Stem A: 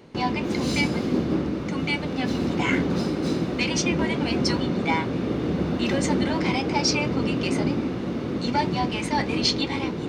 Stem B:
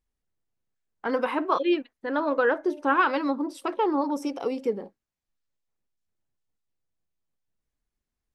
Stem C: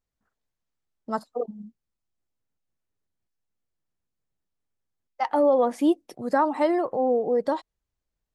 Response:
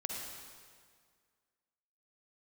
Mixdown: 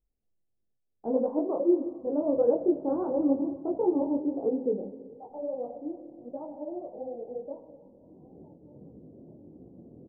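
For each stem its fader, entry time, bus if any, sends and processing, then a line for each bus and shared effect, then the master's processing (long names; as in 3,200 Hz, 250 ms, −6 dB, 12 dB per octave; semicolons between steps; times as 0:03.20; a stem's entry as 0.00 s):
−17.5 dB, 1.70 s, send −17 dB, brickwall limiter −21.5 dBFS, peak gain reduction 11.5 dB; automatic ducking −18 dB, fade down 1.15 s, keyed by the third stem
+1.5 dB, 0.00 s, send −8.5 dB, no processing
−11.0 dB, 0.00 s, send −5 dB, low-shelf EQ 250 Hz −10.5 dB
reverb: on, RT60 1.9 s, pre-delay 43 ms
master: Butterworth low-pass 700 Hz 36 dB per octave; micro pitch shift up and down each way 54 cents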